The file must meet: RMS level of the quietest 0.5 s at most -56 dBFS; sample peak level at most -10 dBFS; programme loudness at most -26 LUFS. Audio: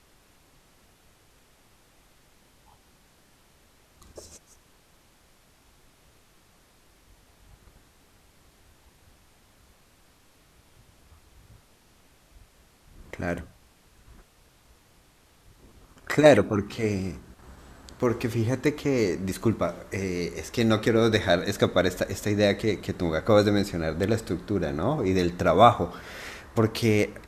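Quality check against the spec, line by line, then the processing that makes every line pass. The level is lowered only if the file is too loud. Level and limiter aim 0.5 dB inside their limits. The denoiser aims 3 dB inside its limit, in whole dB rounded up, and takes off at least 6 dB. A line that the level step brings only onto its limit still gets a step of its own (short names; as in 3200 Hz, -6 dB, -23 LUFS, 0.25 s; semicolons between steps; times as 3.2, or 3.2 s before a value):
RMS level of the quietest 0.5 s -59 dBFS: OK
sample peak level -2.5 dBFS: fail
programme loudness -24.5 LUFS: fail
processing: gain -2 dB; limiter -10.5 dBFS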